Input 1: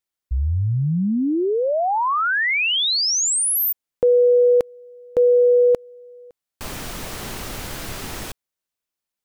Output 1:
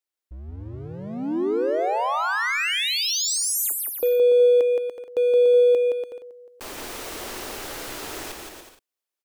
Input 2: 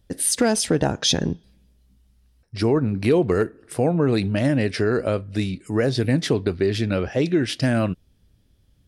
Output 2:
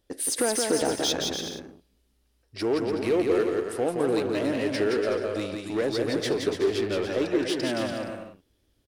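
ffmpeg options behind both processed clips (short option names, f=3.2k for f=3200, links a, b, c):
-filter_complex "[0:a]asplit=2[a][b];[b]aeval=exprs='0.0668*(abs(mod(val(0)/0.0668+3,4)-2)-1)':c=same,volume=-7dB[c];[a][c]amix=inputs=2:normalize=0,lowshelf=f=240:t=q:w=1.5:g=-10,aecho=1:1:170|289|372.3|430.6|471.4:0.631|0.398|0.251|0.158|0.1,volume=-7dB"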